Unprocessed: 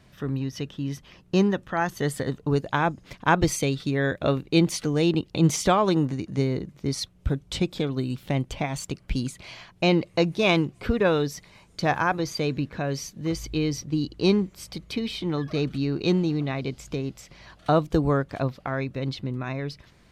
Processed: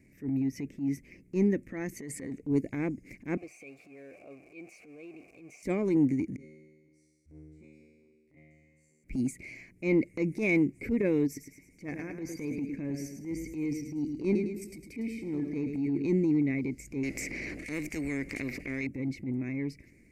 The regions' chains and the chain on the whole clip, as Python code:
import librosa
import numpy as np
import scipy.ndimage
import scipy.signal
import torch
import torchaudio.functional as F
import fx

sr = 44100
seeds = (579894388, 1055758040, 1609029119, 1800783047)

y = fx.chain(x, sr, fx.lowpass(hz=9400.0, slope=12),
    fx.low_shelf(hz=230.0, db=-8.0),
    fx.over_compress(threshold_db=-34.0, ratio=-1.0), at=(1.94, 2.43))
y = fx.chain(y, sr, fx.zero_step(step_db=-24.0),
    fx.vowel_filter(vowel='a'),
    fx.peak_eq(hz=250.0, db=-8.0, octaves=1.6), at=(3.37, 5.63))
y = fx.chain(y, sr, fx.lowpass(hz=10000.0, slope=12),
    fx.level_steps(step_db=23),
    fx.comb_fb(f0_hz=77.0, decay_s=1.7, harmonics='all', damping=0.0, mix_pct=100), at=(6.36, 9.04))
y = fx.chain(y, sr, fx.notch(hz=4100.0, q=17.0),
    fx.level_steps(step_db=10),
    fx.echo_feedback(ms=106, feedback_pct=47, wet_db=-8.0), at=(11.26, 16.05))
y = fx.chain(y, sr, fx.lowpass(hz=3100.0, slope=6),
    fx.spectral_comp(ratio=4.0), at=(17.03, 18.87))
y = fx.curve_eq(y, sr, hz=(170.0, 280.0, 520.0, 920.0, 1400.0, 2200.0, 3300.0, 4700.0, 7400.0), db=(0, 11, -2, -20, -18, 10, -25, -9, 2))
y = fx.transient(y, sr, attack_db=-10, sustain_db=2)
y = y * librosa.db_to_amplitude(-6.5)